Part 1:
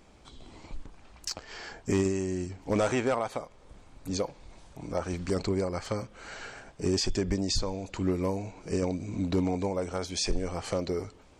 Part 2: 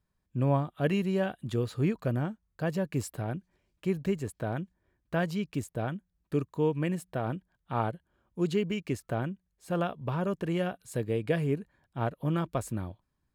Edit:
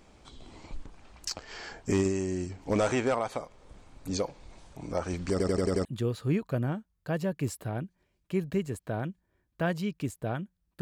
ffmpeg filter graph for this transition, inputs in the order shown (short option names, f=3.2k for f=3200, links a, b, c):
-filter_complex "[0:a]apad=whole_dur=10.81,atrim=end=10.81,asplit=6[a][b][c][d][e][f];[a]atrim=end=5.402[g];[b]atrim=start=5.308:end=5.402[h];[c]atrim=start=5.308:end=5.402[i];[d]atrim=start=5.308:end=5.402[j];[e]atrim=start=5.308:end=5.402[k];[f]atrim=start=5.308:end=5.402[l];[1:a]atrim=start=1.378:end=6.34[m];[g][h]acrossfade=d=0.004:c1=hsin:c2=hsin[n];[n][i]acrossfade=d=0.004:c1=hsin:c2=hsin[o];[o][j]acrossfade=d=0.004:c1=hsin:c2=hsin[p];[p][k]acrossfade=d=0.004:c1=hsin:c2=hsin[q];[q][l]acrossfade=d=0.004:c1=hsin:c2=hsin[r];[r][m]acrossfade=d=0.004:c1=hsin:c2=hsin"